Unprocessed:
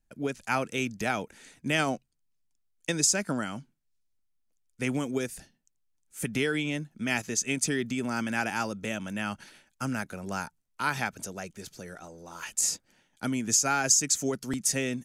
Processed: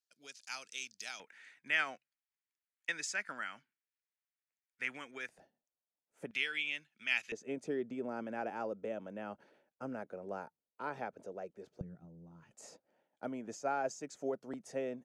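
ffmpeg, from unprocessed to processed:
-af "asetnsamples=n=441:p=0,asendcmd='1.2 bandpass f 1900;5.29 bandpass f 620;6.31 bandpass f 2600;7.32 bandpass f 510;11.81 bandpass f 150;12.51 bandpass f 590',bandpass=f=4.9k:t=q:w=2.2:csg=0"

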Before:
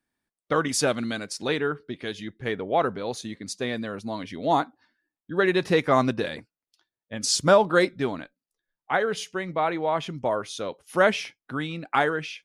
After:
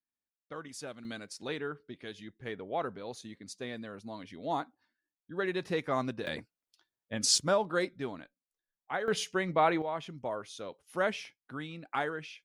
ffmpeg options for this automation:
-af "asetnsamples=n=441:p=0,asendcmd='1.05 volume volume -11dB;6.27 volume volume -2dB;7.38 volume volume -10.5dB;9.08 volume volume -1dB;9.82 volume volume -10.5dB',volume=-19.5dB"

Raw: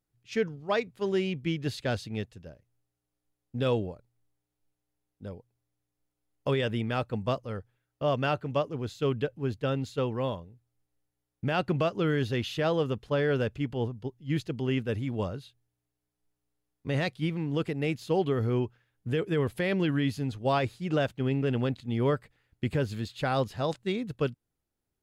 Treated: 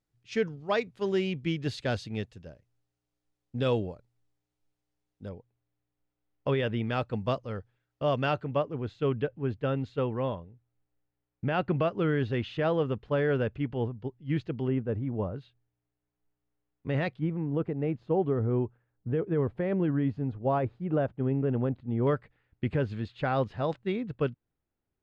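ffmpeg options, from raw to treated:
-af "asetnsamples=n=441:p=0,asendcmd='5.29 lowpass f 3100;6.84 lowpass f 5200;8.44 lowpass f 2500;14.68 lowpass f 1100;15.36 lowpass f 2400;17.19 lowpass f 1100;22.07 lowpass f 2500',lowpass=7.2k"

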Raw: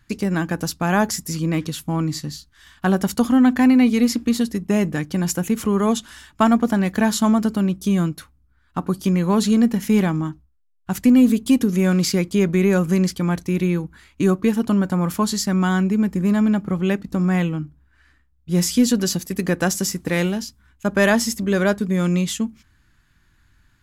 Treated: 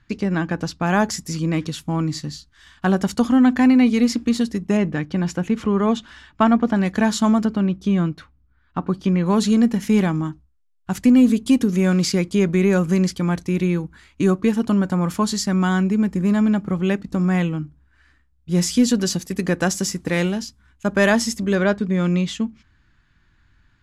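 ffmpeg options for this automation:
-af "asetnsamples=n=441:p=0,asendcmd='0.86 lowpass f 7700;4.77 lowpass f 3800;6.76 lowpass f 7500;7.45 lowpass f 3600;9.26 lowpass f 9200;21.55 lowpass f 4600',lowpass=4.6k"

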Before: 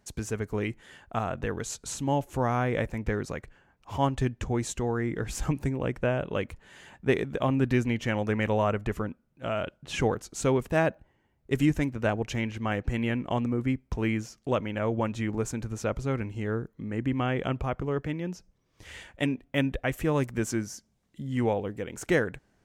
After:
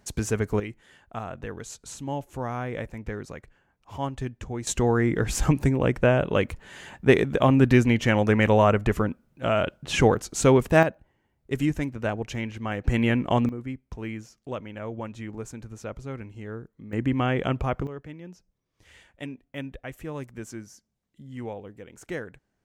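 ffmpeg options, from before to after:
-af "asetnsamples=n=441:p=0,asendcmd='0.6 volume volume -4.5dB;4.67 volume volume 7dB;10.83 volume volume -1dB;12.84 volume volume 6dB;13.49 volume volume -6.5dB;16.93 volume volume 3.5dB;17.87 volume volume -9dB',volume=6dB"

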